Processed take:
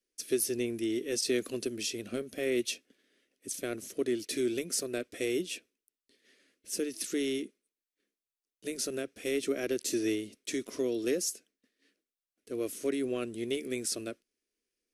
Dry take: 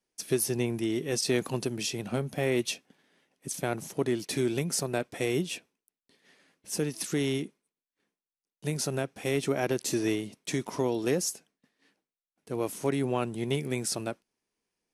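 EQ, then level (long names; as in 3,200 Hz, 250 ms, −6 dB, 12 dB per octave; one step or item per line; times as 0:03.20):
phaser with its sweep stopped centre 360 Hz, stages 4
−1.5 dB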